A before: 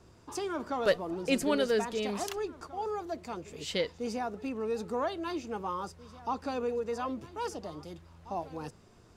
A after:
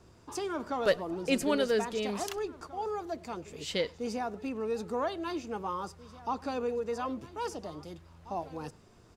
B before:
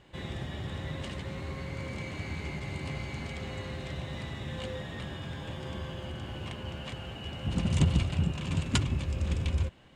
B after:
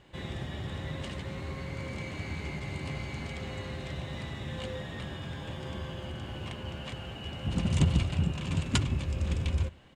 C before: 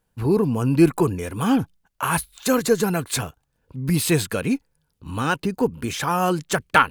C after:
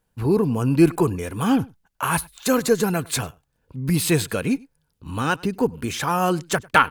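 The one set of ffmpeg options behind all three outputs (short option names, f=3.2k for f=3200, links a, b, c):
-filter_complex "[0:a]asplit=2[a][b];[b]adelay=99.13,volume=-25dB,highshelf=f=4k:g=-2.23[c];[a][c]amix=inputs=2:normalize=0"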